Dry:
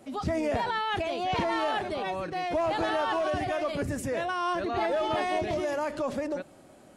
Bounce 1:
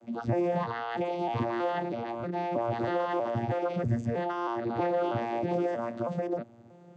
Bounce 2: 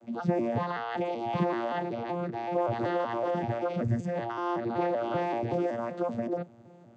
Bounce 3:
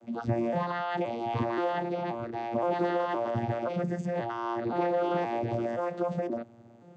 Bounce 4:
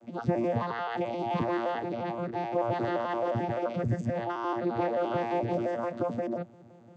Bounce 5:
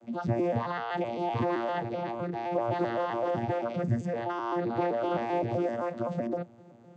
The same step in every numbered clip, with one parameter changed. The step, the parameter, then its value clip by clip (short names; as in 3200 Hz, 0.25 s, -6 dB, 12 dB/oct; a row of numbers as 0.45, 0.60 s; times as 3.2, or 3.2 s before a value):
arpeggiated vocoder, a note every: 319, 190, 524, 87, 129 ms